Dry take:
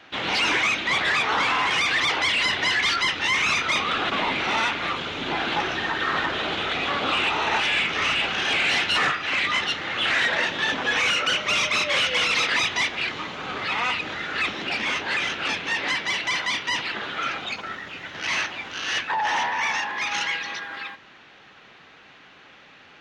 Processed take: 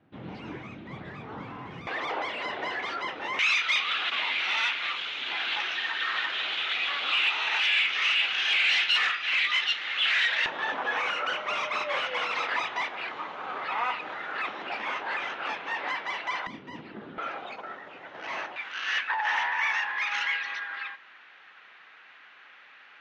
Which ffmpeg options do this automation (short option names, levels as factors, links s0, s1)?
-af "asetnsamples=n=441:p=0,asendcmd='1.87 bandpass f 590;3.39 bandpass f 2800;10.46 bandpass f 900;16.47 bandpass f 220;17.18 bandpass f 670;18.56 bandpass f 1700',bandpass=f=140:t=q:w=1.2:csg=0"